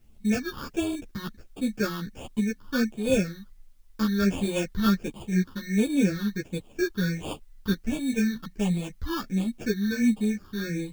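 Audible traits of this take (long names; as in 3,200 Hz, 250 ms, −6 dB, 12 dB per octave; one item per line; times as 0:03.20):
aliases and images of a low sample rate 2,000 Hz, jitter 0%
phaser sweep stages 6, 1.4 Hz, lowest notch 630–1,600 Hz
a quantiser's noise floor 12 bits, dither triangular
a shimmering, thickened sound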